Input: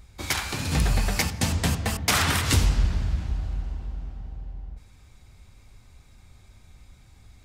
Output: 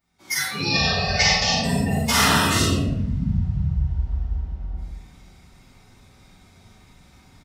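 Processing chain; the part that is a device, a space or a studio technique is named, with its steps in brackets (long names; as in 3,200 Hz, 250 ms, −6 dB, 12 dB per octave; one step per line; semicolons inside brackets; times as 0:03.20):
0:00.57–0:01.50: drawn EQ curve 100 Hz 0 dB, 260 Hz −10 dB, 540 Hz +4 dB, 980 Hz +2 dB, 5,200 Hz +8 dB, 14,000 Hz −21 dB
slap from a distant wall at 92 metres, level −16 dB
rectangular room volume 370 cubic metres, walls mixed, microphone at 7.6 metres
noise reduction from a noise print of the clip's start 22 dB
far laptop microphone (convolution reverb RT60 0.55 s, pre-delay 36 ms, DRR 0 dB; high-pass filter 160 Hz 12 dB per octave; automatic gain control gain up to 15 dB)
level −5.5 dB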